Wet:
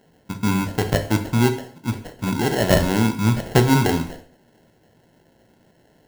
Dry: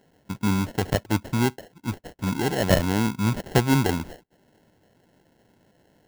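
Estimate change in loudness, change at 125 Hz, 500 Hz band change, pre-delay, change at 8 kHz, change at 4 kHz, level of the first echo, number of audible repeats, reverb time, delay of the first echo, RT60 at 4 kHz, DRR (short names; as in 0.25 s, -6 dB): +4.0 dB, +4.5 dB, +4.5 dB, 9 ms, +4.0 dB, +3.5 dB, none, none, 0.55 s, none, 0.55 s, 6.5 dB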